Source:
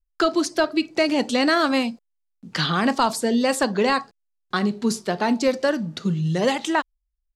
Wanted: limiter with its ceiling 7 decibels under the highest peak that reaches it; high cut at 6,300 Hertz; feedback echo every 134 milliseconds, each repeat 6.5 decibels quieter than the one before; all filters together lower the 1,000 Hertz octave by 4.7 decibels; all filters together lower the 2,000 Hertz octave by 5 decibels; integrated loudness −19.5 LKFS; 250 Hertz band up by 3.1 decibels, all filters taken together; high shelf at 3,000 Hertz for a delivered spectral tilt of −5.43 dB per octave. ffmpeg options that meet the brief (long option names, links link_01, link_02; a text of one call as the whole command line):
ffmpeg -i in.wav -af "lowpass=6300,equalizer=frequency=250:width_type=o:gain=4,equalizer=frequency=1000:width_type=o:gain=-5,equalizer=frequency=2000:width_type=o:gain=-3.5,highshelf=frequency=3000:gain=-3.5,alimiter=limit=-16dB:level=0:latency=1,aecho=1:1:134|268|402|536|670|804:0.473|0.222|0.105|0.0491|0.0231|0.0109,volume=4.5dB" out.wav